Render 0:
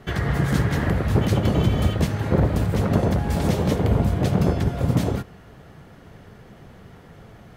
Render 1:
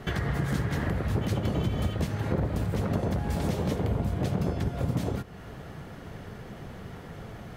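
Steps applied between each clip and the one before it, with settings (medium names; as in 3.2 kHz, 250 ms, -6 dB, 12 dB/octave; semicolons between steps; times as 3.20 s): compression 2.5:1, threshold -34 dBFS, peak gain reduction 13.5 dB; trim +3.5 dB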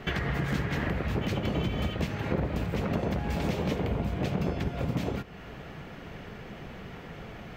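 fifteen-band graphic EQ 100 Hz -6 dB, 2.5 kHz +7 dB, 10 kHz -11 dB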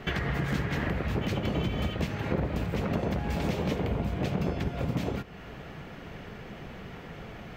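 no audible change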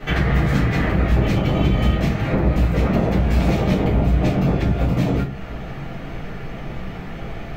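simulated room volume 120 m³, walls furnished, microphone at 3.8 m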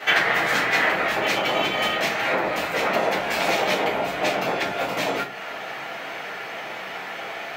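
high-pass 790 Hz 12 dB/octave; band-stop 1.2 kHz, Q 15; trim +8 dB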